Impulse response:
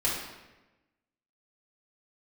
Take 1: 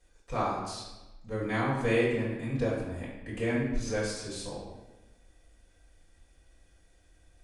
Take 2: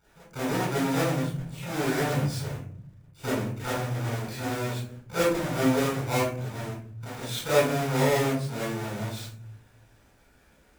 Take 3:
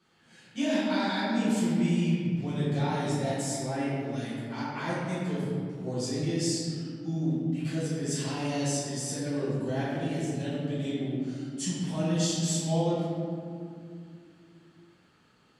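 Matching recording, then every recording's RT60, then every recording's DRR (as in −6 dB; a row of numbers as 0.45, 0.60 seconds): 1; 1.1, 0.55, 2.5 seconds; −7.5, −10.0, −11.0 decibels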